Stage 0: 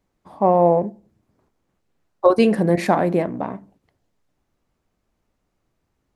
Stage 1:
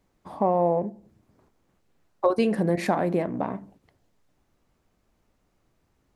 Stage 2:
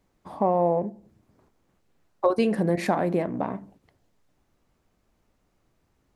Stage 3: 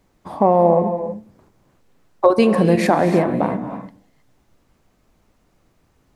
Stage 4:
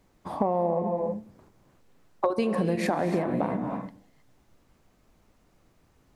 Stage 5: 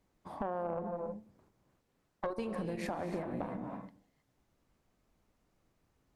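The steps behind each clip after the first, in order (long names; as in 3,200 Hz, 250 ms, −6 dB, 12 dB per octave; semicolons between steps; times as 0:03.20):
downward compressor 2 to 1, threshold −30 dBFS, peak gain reduction 11.5 dB; level +3 dB
no processing that can be heard
reverb whose tail is shaped and stops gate 340 ms rising, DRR 8 dB; level +8 dB
downward compressor 6 to 1, threshold −20 dBFS, peak gain reduction 11.5 dB; level −2.5 dB
tube saturation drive 17 dB, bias 0.65; level −7.5 dB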